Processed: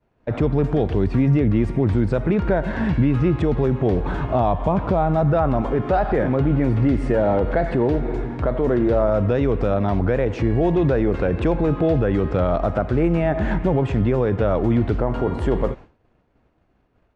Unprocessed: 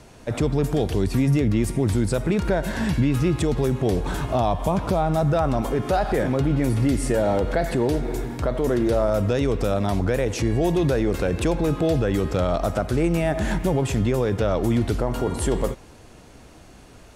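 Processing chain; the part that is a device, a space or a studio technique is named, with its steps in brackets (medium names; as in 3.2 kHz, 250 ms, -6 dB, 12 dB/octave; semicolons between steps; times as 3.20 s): hearing-loss simulation (low-pass 2.1 kHz 12 dB/octave; expander -34 dBFS); trim +2.5 dB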